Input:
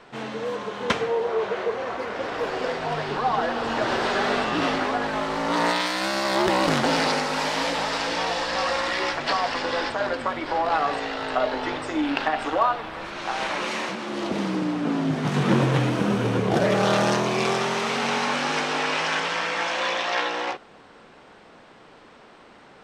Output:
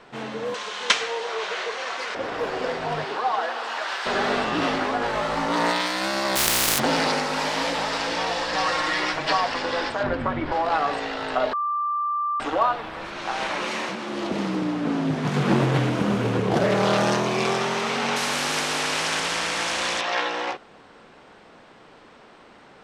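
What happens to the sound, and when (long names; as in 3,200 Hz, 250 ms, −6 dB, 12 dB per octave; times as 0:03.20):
0:00.54–0:02.15: meter weighting curve ITU-R 468
0:03.04–0:04.05: high-pass filter 330 Hz → 1,300 Hz
0:05.00–0:05.45: double-tracking delay 17 ms −3 dB
0:06.35–0:06.78: compressing power law on the bin magnitudes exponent 0.15
0:08.53–0:09.44: comb filter 6.4 ms
0:10.03–0:10.52: bass and treble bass +13 dB, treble −13 dB
0:11.53–0:12.40: beep over 1,180 Hz −22 dBFS
0:14.14–0:16.97: highs frequency-modulated by the lows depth 0.37 ms
0:18.16–0:20.01: every bin compressed towards the loudest bin 2 to 1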